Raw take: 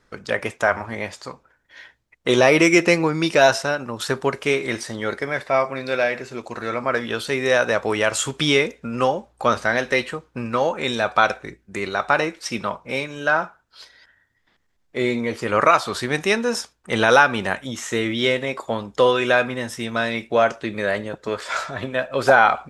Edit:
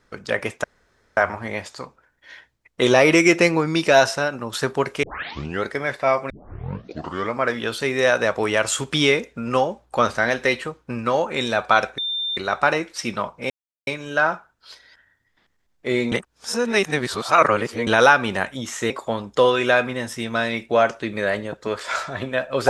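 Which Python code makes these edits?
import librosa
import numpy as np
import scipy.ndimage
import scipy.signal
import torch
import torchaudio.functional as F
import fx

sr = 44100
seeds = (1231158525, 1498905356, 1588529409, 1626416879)

y = fx.edit(x, sr, fx.insert_room_tone(at_s=0.64, length_s=0.53),
    fx.tape_start(start_s=4.5, length_s=0.6),
    fx.tape_start(start_s=5.77, length_s=1.05),
    fx.bleep(start_s=11.45, length_s=0.39, hz=3590.0, db=-22.5),
    fx.insert_silence(at_s=12.97, length_s=0.37),
    fx.reverse_span(start_s=15.22, length_s=1.75),
    fx.cut(start_s=18.0, length_s=0.51), tone=tone)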